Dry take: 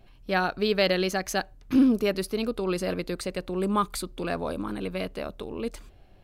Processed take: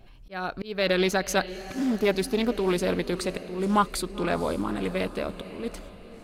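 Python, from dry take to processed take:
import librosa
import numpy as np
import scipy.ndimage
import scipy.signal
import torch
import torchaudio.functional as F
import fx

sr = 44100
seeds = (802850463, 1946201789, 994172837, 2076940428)

y = fx.auto_swell(x, sr, attack_ms=384.0)
y = fx.echo_diffused(y, sr, ms=510, feedback_pct=46, wet_db=-14)
y = fx.doppler_dist(y, sr, depth_ms=0.26)
y = y * librosa.db_to_amplitude(3.0)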